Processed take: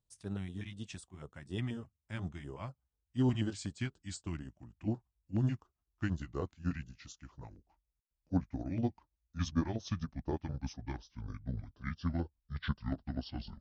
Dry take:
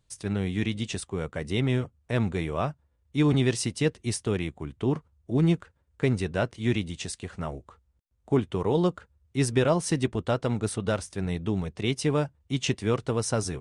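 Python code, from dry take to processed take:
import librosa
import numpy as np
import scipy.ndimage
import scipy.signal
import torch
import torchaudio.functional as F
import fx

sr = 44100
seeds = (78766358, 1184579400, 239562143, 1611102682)

y = fx.pitch_glide(x, sr, semitones=-11.0, runs='starting unshifted')
y = fx.filter_lfo_notch(y, sr, shape='square', hz=4.1, low_hz=450.0, high_hz=2200.0, q=1.0)
y = fx.upward_expand(y, sr, threshold_db=-38.0, expansion=1.5)
y = F.gain(torch.from_numpy(y), -6.0).numpy()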